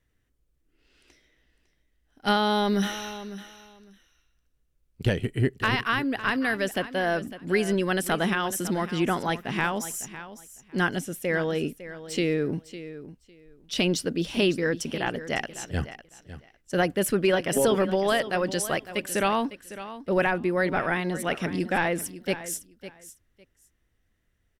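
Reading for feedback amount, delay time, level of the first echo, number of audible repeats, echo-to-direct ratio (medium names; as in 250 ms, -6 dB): 18%, 554 ms, -14.0 dB, 2, -14.0 dB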